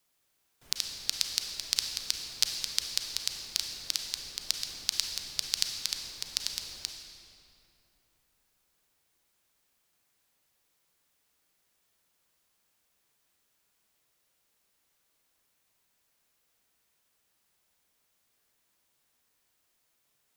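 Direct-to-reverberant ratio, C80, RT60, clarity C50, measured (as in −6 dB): 3.0 dB, 5.0 dB, 2.9 s, 4.0 dB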